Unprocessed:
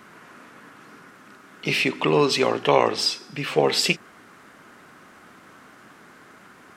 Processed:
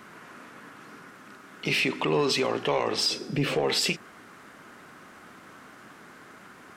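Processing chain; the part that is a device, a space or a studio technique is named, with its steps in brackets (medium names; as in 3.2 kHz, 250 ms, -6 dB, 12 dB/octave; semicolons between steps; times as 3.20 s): 3.10–3.55 s: resonant low shelf 680 Hz +9 dB, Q 1.5; soft clipper into limiter (saturation -8.5 dBFS, distortion -18 dB; peak limiter -16.5 dBFS, peak gain reduction 7 dB)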